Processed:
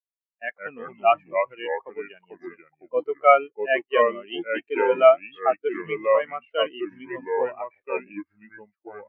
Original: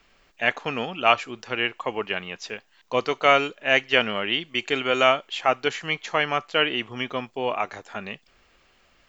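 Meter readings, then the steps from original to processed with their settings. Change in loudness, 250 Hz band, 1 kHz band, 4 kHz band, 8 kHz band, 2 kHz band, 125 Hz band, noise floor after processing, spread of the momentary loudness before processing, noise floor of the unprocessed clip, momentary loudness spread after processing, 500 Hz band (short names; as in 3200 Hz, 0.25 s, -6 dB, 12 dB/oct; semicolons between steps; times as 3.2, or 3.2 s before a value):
+0.5 dB, -3.5 dB, +1.0 dB, -12.0 dB, n/a, -6.0 dB, under -10 dB, under -85 dBFS, 15 LU, -62 dBFS, 20 LU, +4.5 dB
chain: echoes that change speed 90 ms, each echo -3 st, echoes 2; sample leveller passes 1; spectral expander 2.5:1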